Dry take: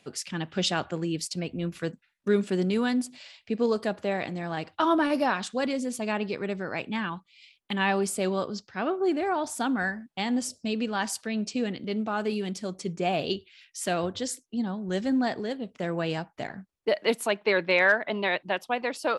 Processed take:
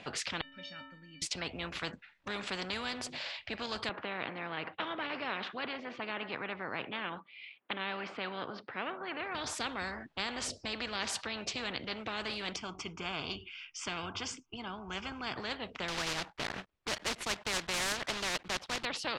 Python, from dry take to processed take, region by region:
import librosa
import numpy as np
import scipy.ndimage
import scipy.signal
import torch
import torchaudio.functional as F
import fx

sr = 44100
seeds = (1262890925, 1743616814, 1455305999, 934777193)

y = fx.chain(x, sr, fx.lowpass(hz=3400.0, slope=12),
    fx.band_shelf(hz=570.0, db=-14.5, octaves=2.3),
    fx.stiff_resonator(f0_hz=270.0, decay_s=0.73, stiffness=0.03), at=(0.41, 1.22))
y = fx.chain(y, sr, fx.bandpass_edges(low_hz=240.0, high_hz=2300.0),
    fx.air_absorb(metres=120.0), at=(3.89, 9.35))
y = fx.chain(y, sr, fx.high_shelf(hz=6600.0, db=-8.5),
    fx.fixed_phaser(hz=2700.0, stages=8), at=(12.56, 15.37))
y = fx.chain(y, sr, fx.block_float(bits=3),
    fx.transient(attack_db=-3, sustain_db=-7), at=(15.88, 18.86))
y = scipy.signal.sosfilt(scipy.signal.butter(2, 3200.0, 'lowpass', fs=sr, output='sos'), y)
y = fx.spectral_comp(y, sr, ratio=4.0)
y = F.gain(torch.from_numpy(y), -7.0).numpy()